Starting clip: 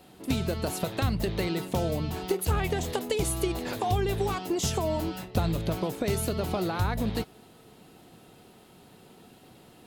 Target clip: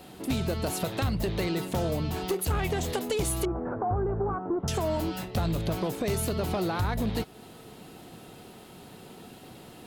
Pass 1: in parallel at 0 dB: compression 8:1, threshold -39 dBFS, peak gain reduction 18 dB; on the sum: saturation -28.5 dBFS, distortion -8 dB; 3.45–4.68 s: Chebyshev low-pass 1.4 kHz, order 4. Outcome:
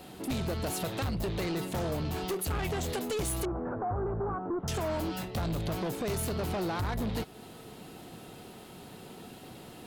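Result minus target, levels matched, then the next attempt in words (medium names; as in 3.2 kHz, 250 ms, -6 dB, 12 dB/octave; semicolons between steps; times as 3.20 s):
saturation: distortion +7 dB
in parallel at 0 dB: compression 8:1, threshold -39 dBFS, peak gain reduction 18 dB; on the sum: saturation -20.5 dBFS, distortion -16 dB; 3.45–4.68 s: Chebyshev low-pass 1.4 kHz, order 4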